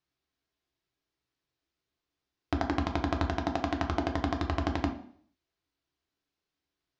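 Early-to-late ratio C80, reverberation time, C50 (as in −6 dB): 13.0 dB, 0.55 s, 9.0 dB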